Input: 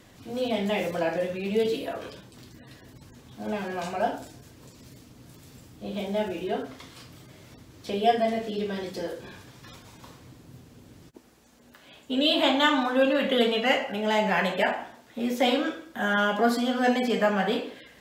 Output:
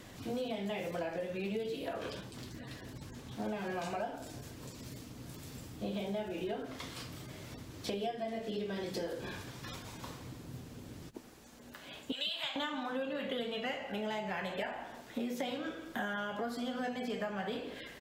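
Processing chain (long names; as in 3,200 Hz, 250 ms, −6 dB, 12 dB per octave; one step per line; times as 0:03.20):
0:12.12–0:12.56: high-pass filter 1,400 Hz 12 dB per octave
downward compressor 16 to 1, threshold −36 dBFS, peak gain reduction 21.5 dB
echo with shifted repeats 168 ms, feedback 51%, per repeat −59 Hz, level −20 dB
0:01.83–0:03.46: highs frequency-modulated by the lows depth 0.19 ms
level +2 dB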